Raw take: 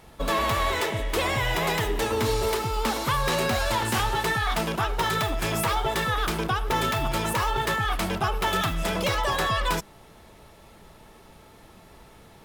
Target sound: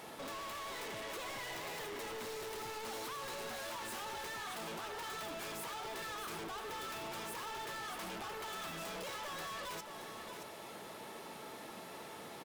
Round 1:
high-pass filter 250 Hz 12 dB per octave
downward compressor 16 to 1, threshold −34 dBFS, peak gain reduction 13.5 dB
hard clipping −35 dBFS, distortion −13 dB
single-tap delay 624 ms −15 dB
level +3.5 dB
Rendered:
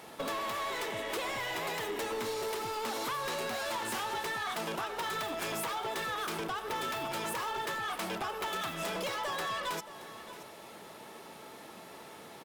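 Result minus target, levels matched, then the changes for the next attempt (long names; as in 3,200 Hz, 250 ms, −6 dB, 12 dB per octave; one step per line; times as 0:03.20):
hard clipping: distortion −8 dB; echo-to-direct −7 dB
change: hard clipping −46.5 dBFS, distortion −4 dB
change: single-tap delay 624 ms −8 dB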